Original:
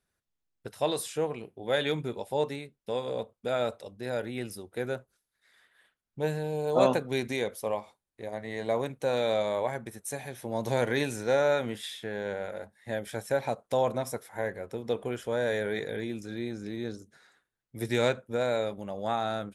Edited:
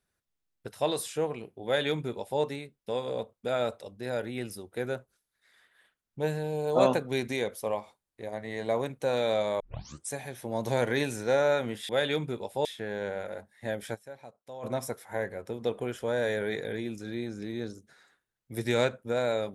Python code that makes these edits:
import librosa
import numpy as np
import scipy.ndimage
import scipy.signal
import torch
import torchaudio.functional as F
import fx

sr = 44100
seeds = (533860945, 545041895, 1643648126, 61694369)

y = fx.edit(x, sr, fx.duplicate(start_s=1.65, length_s=0.76, to_s=11.89),
    fx.tape_start(start_s=9.6, length_s=0.5),
    fx.fade_down_up(start_s=13.18, length_s=0.71, db=-17.0, fade_s=0.12, curve='exp'), tone=tone)